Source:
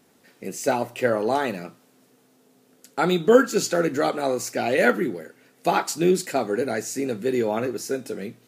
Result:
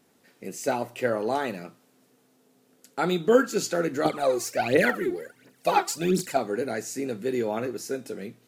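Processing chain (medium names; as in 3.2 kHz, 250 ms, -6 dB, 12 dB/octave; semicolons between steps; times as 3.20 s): 4.05–6.37 s: phaser 1.4 Hz, delay 2.9 ms, feedback 71%; trim -4 dB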